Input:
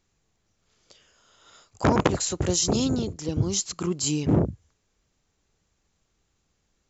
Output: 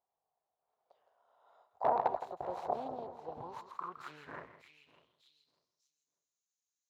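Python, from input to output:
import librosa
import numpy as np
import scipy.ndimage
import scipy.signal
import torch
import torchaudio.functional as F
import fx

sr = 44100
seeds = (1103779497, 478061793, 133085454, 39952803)

p1 = fx.self_delay(x, sr, depth_ms=0.52)
p2 = fx.graphic_eq_31(p1, sr, hz=(100, 200, 315, 1000, 4000), db=(-9, -10, -10, 6, 8))
p3 = p2 + 10.0 ** (-11.5 / 20.0) * np.pad(p2, (int(164 * sr / 1000.0), 0))[:len(p2)]
p4 = fx.quant_companded(p3, sr, bits=4)
p5 = p3 + (p4 * librosa.db_to_amplitude(-8.5))
p6 = fx.high_shelf(p5, sr, hz=2300.0, db=-11.5)
p7 = fx.echo_feedback(p6, sr, ms=597, feedback_pct=30, wet_db=-15.0)
y = fx.filter_sweep_bandpass(p7, sr, from_hz=730.0, to_hz=6500.0, start_s=3.3, end_s=5.98, q=5.1)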